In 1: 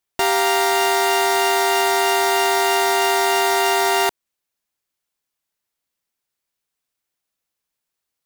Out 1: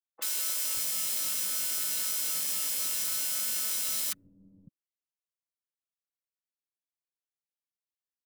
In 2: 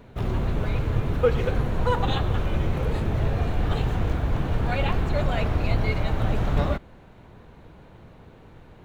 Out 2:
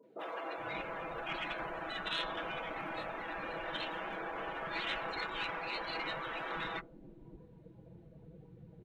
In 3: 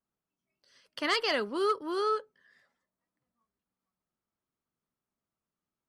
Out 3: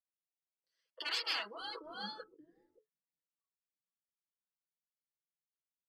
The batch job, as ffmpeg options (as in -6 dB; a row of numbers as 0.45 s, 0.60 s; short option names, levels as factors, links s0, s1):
-filter_complex "[0:a]afftdn=nr=21:nf=-43,highpass=f=150:p=1,afftfilt=real='re*lt(hypot(re,im),0.0794)':imag='im*lt(hypot(re,im),0.0794)':win_size=1024:overlap=0.75,aecho=1:1:6.1:0.56,asplit=2[s0][s1];[s1]alimiter=limit=0.0668:level=0:latency=1:release=23,volume=1.12[s2];[s0][s2]amix=inputs=2:normalize=0,aeval=exprs='0.335*(cos(1*acos(clip(val(0)/0.335,-1,1)))-cos(1*PI/2))+0.00473*(cos(2*acos(clip(val(0)/0.335,-1,1)))-cos(2*PI/2))+0.0668*(cos(3*acos(clip(val(0)/0.335,-1,1)))-cos(3*PI/2))+0.00211*(cos(4*acos(clip(val(0)/0.335,-1,1)))-cos(4*PI/2))':c=same,acrossover=split=280|980[s3][s4][s5];[s5]adelay=30[s6];[s3]adelay=580[s7];[s7][s4][s6]amix=inputs=3:normalize=0"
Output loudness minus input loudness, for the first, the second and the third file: -11.0 LU, -13.0 LU, -9.0 LU